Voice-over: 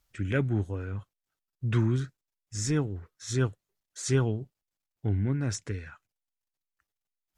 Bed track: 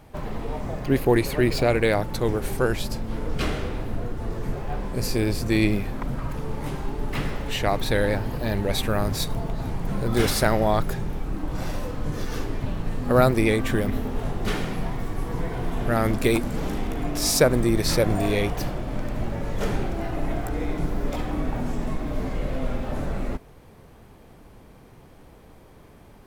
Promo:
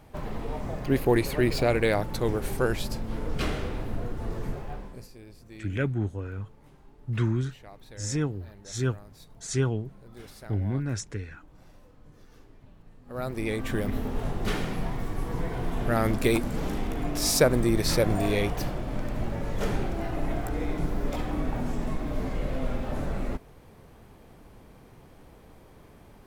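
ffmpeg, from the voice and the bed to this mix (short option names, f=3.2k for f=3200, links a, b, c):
-filter_complex "[0:a]adelay=5450,volume=-0.5dB[a];[1:a]volume=19.5dB,afade=t=out:st=4.4:d=0.68:silence=0.0794328,afade=t=in:st=13.06:d=1.01:silence=0.0749894[b];[a][b]amix=inputs=2:normalize=0"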